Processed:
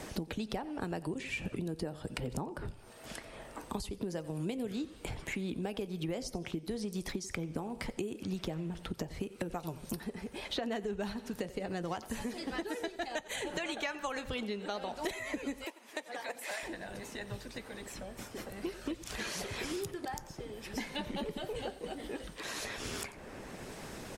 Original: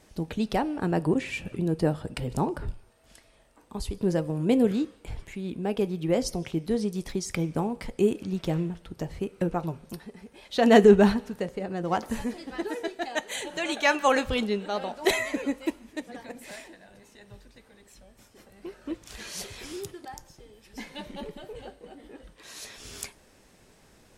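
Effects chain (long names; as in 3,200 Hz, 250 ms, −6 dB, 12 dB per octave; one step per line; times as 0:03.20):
harmonic and percussive parts rebalanced harmonic −5 dB
single-tap delay 88 ms −20.5 dB
downward compressor 6 to 1, threshold −38 dBFS, peak gain reduction 22 dB
0:09.46–0:10.10: high-shelf EQ 4,800 Hz +6.5 dB
0:15.64–0:16.63: Chebyshev high-pass filter 690 Hz, order 2
multiband upward and downward compressor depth 70%
level +3.5 dB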